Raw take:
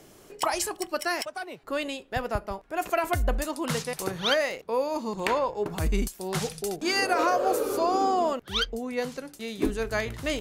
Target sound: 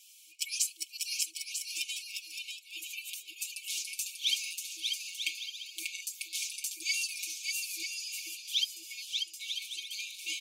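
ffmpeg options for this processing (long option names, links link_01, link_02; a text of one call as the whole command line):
ffmpeg -i in.wav -filter_complex "[0:a]asplit=2[link_01][link_02];[link_02]acompressor=threshold=-36dB:ratio=6,volume=0dB[link_03];[link_01][link_03]amix=inputs=2:normalize=0,afftfilt=real='re*(1-between(b*sr/4096,330,2200))':imag='im*(1-between(b*sr/4096,330,2200))':win_size=4096:overlap=0.75,adynamicequalizer=threshold=0.00282:dfrequency=6400:dqfactor=2.6:tfrequency=6400:tqfactor=2.6:attack=5:release=100:ratio=0.375:range=2:mode=boostabove:tftype=bell,aecho=1:1:5:0.99,asplit=2[link_04][link_05];[link_05]aecho=0:1:590|944|1156|1284|1360:0.631|0.398|0.251|0.158|0.1[link_06];[link_04][link_06]amix=inputs=2:normalize=0,afftfilt=real='re*gte(b*sr/1024,320*pow(2400/320,0.5+0.5*sin(2*PI*2*pts/sr)))':imag='im*gte(b*sr/1024,320*pow(2400/320,0.5+0.5*sin(2*PI*2*pts/sr)))':win_size=1024:overlap=0.75,volume=-7dB" out.wav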